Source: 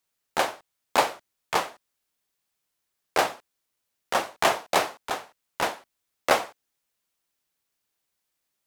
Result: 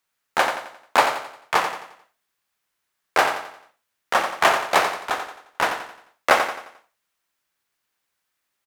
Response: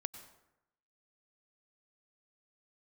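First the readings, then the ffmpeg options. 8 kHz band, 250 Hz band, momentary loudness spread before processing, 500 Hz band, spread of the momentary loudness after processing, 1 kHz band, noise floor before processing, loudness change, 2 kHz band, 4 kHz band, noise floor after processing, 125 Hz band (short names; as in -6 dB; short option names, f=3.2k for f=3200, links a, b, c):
+1.5 dB, +1.5 dB, 10 LU, +3.0 dB, 14 LU, +5.5 dB, -80 dBFS, +4.5 dB, +7.5 dB, +3.5 dB, -78 dBFS, +1.0 dB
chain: -af "equalizer=f=1.5k:t=o:w=1.9:g=7.5,aecho=1:1:88|176|264|352|440:0.398|0.167|0.0702|0.0295|0.0124"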